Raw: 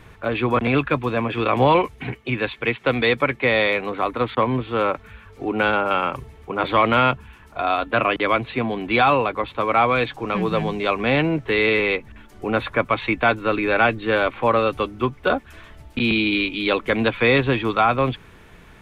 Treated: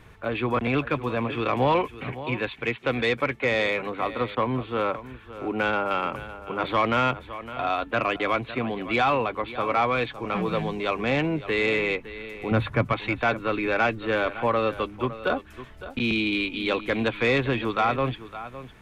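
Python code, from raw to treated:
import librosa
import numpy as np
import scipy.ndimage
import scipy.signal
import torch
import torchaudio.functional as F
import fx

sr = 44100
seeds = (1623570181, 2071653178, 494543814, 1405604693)

p1 = fx.peak_eq(x, sr, hz=120.0, db=13.5, octaves=1.8, at=(12.51, 12.93))
p2 = p1 + fx.echo_single(p1, sr, ms=560, db=-15.0, dry=0)
p3 = 10.0 ** (-7.0 / 20.0) * np.tanh(p2 / 10.0 ** (-7.0 / 20.0))
y = p3 * librosa.db_to_amplitude(-4.5)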